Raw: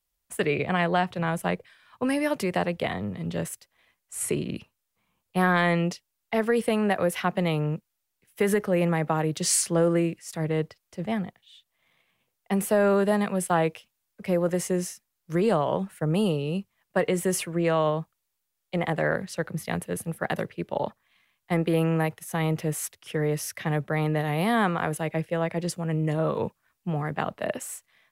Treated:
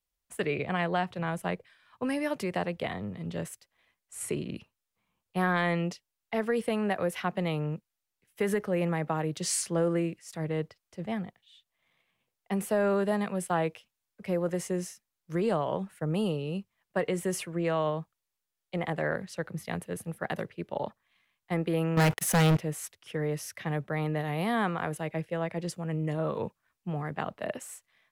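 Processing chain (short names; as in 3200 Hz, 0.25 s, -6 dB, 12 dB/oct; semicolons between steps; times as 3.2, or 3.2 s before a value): high shelf 11000 Hz -6 dB; 21.97–22.57 sample leveller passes 5; gain -5 dB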